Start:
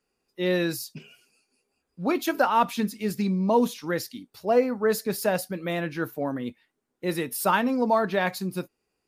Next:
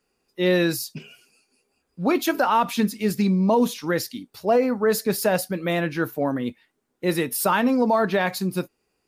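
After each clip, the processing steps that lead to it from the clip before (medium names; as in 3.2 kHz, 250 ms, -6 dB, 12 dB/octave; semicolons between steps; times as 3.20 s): peak limiter -16 dBFS, peak gain reduction 6 dB; trim +5 dB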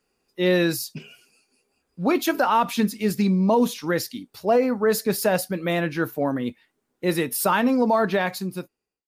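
fade out at the end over 0.96 s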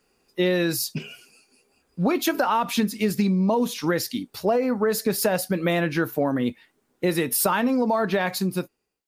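compression, threshold -25 dBFS, peak gain reduction 10 dB; trim +6 dB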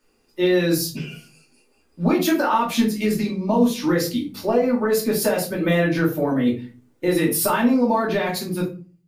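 simulated room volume 190 m³, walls furnished, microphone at 2.6 m; trim -3.5 dB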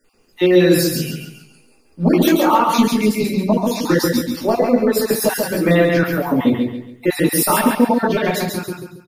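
random holes in the spectrogram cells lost 31%; feedback delay 138 ms, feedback 34%, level -4 dB; trim +4.5 dB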